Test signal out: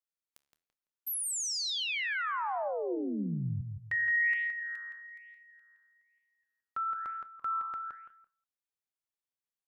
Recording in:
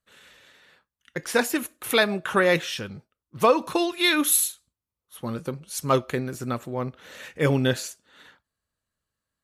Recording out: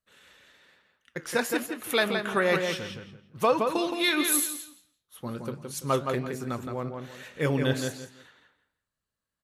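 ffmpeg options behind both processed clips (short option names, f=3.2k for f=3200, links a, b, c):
-filter_complex "[0:a]asplit=2[a][b];[b]adelay=168,lowpass=f=4.2k:p=1,volume=-5dB,asplit=2[c][d];[d]adelay=168,lowpass=f=4.2k:p=1,volume=0.26,asplit=2[e][f];[f]adelay=168,lowpass=f=4.2k:p=1,volume=0.26[g];[c][e][g]amix=inputs=3:normalize=0[h];[a][h]amix=inputs=2:normalize=0,flanger=delay=4.6:depth=9.6:regen=85:speed=1.1:shape=sinusoidal,asplit=2[i][j];[j]aecho=0:1:195:0.0631[k];[i][k]amix=inputs=2:normalize=0"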